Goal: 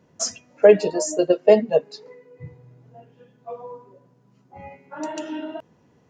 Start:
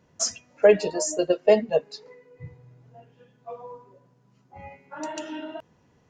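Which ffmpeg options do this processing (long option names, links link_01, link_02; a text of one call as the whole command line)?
ffmpeg -i in.wav -af "highpass=frequency=330:poles=1,lowshelf=frequency=470:gain=12" out.wav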